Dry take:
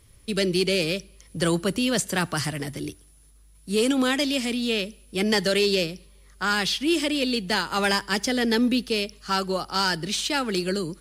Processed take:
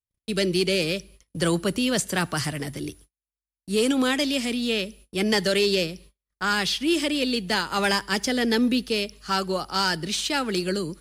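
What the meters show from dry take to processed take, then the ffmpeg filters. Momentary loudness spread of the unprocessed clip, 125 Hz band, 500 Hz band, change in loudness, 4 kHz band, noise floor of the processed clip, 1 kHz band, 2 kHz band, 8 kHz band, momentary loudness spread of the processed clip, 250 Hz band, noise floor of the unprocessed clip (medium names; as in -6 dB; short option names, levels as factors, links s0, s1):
8 LU, 0.0 dB, 0.0 dB, 0.0 dB, 0.0 dB, under -85 dBFS, 0.0 dB, 0.0 dB, 0.0 dB, 8 LU, 0.0 dB, -54 dBFS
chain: -af "agate=range=0.00631:threshold=0.00447:ratio=16:detection=peak"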